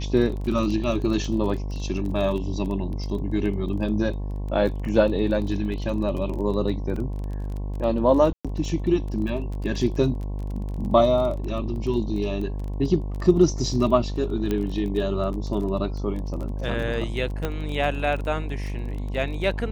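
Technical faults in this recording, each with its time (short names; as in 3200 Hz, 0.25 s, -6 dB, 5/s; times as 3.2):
buzz 50 Hz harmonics 22 -29 dBFS
crackle 20/s -31 dBFS
6.96 gap 3.4 ms
8.33–8.45 gap 0.116 s
14.51 pop -13 dBFS
17.45 pop -13 dBFS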